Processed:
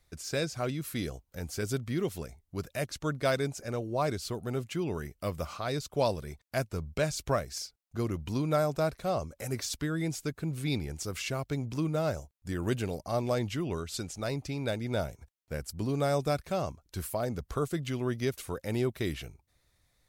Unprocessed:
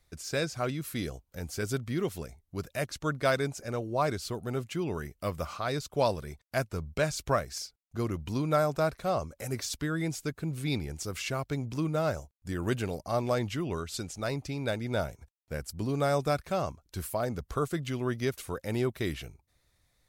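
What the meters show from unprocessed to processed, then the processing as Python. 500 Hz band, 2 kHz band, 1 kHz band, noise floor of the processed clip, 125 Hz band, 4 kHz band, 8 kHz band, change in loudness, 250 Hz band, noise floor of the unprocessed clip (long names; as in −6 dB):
−1.0 dB, −2.5 dB, −2.5 dB, −75 dBFS, 0.0 dB, −0.5 dB, 0.0 dB, −0.5 dB, 0.0 dB, −74 dBFS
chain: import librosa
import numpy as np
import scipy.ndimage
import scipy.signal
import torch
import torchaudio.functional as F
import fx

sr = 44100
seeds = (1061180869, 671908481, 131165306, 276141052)

y = fx.dynamic_eq(x, sr, hz=1300.0, q=0.98, threshold_db=-41.0, ratio=4.0, max_db=-4)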